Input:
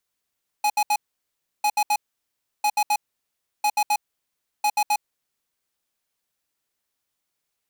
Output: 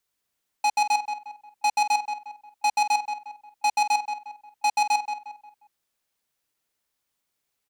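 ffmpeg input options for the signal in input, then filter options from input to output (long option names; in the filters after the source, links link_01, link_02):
-f lavfi -i "aevalsrc='0.1*(2*lt(mod(837*t,1),0.5)-1)*clip(min(mod(mod(t,1),0.13),0.06-mod(mod(t,1),0.13))/0.005,0,1)*lt(mod(t,1),0.39)':duration=5:sample_rate=44100"
-filter_complex "[0:a]acrossover=split=9000[link_01][link_02];[link_02]acompressor=threshold=-48dB:ratio=4:attack=1:release=60[link_03];[link_01][link_03]amix=inputs=2:normalize=0,asplit=2[link_04][link_05];[link_05]adelay=178,lowpass=frequency=2700:poles=1,volume=-7dB,asplit=2[link_06][link_07];[link_07]adelay=178,lowpass=frequency=2700:poles=1,volume=0.37,asplit=2[link_08][link_09];[link_09]adelay=178,lowpass=frequency=2700:poles=1,volume=0.37,asplit=2[link_10][link_11];[link_11]adelay=178,lowpass=frequency=2700:poles=1,volume=0.37[link_12];[link_06][link_08][link_10][link_12]amix=inputs=4:normalize=0[link_13];[link_04][link_13]amix=inputs=2:normalize=0"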